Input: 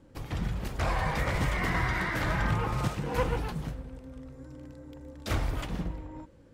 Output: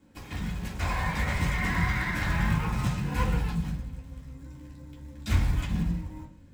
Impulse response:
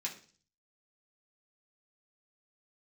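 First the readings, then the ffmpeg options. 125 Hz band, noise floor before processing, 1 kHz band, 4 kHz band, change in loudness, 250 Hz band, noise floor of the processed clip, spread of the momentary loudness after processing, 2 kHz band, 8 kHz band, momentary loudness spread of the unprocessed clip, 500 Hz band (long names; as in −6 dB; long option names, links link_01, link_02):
+3.5 dB, −56 dBFS, −1.0 dB, +0.5 dB, +2.0 dB, +3.5 dB, −51 dBFS, 18 LU, +1.0 dB, +2.0 dB, 18 LU, −6.5 dB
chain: -filter_complex "[0:a]acrusher=bits=6:mode=log:mix=0:aa=0.000001[link_01];[1:a]atrim=start_sample=2205[link_02];[link_01][link_02]afir=irnorm=-1:irlink=0,asubboost=boost=5:cutoff=170"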